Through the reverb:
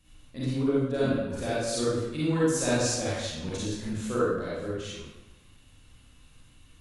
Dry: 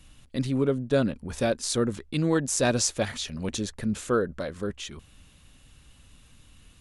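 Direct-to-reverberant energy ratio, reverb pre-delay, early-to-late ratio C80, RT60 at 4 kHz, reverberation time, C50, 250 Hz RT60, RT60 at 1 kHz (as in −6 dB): −9.0 dB, 34 ms, 0.0 dB, 0.75 s, 1.1 s, −4.5 dB, 1.0 s, 1.1 s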